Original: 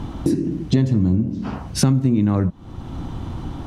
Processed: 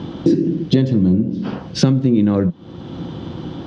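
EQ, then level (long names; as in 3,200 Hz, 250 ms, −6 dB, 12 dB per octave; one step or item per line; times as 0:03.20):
loudspeaker in its box 160–6,300 Hz, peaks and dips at 170 Hz +5 dB, 350 Hz +6 dB, 510 Hz +10 dB, 1,600 Hz +4 dB, 3,300 Hz +7 dB, 4,800 Hz +4 dB
low-shelf EQ 300 Hz +8.5 dB
parametric band 3,300 Hz +4 dB 1.8 octaves
−3.0 dB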